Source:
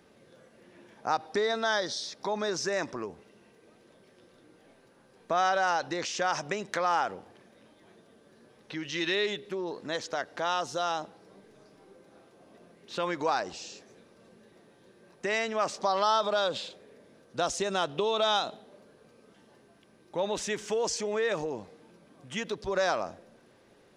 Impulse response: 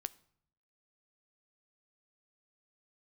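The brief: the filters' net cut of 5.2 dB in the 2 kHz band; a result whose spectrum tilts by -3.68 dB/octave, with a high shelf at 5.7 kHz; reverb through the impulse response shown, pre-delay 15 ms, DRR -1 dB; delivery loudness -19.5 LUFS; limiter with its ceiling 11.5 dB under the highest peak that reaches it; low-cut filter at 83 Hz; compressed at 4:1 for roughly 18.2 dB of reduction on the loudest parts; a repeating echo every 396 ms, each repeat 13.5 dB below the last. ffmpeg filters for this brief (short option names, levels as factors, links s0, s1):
-filter_complex "[0:a]highpass=83,equalizer=f=2000:t=o:g=-6.5,highshelf=f=5700:g=-6,acompressor=threshold=0.00447:ratio=4,alimiter=level_in=5.62:limit=0.0631:level=0:latency=1,volume=0.178,aecho=1:1:396|792:0.211|0.0444,asplit=2[s0][s1];[1:a]atrim=start_sample=2205,adelay=15[s2];[s1][s2]afir=irnorm=-1:irlink=0,volume=1.41[s3];[s0][s3]amix=inputs=2:normalize=0,volume=25.1"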